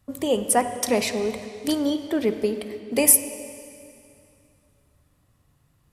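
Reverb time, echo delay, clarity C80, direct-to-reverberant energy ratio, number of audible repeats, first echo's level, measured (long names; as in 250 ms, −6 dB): 2.7 s, no echo audible, 10.5 dB, 8.5 dB, no echo audible, no echo audible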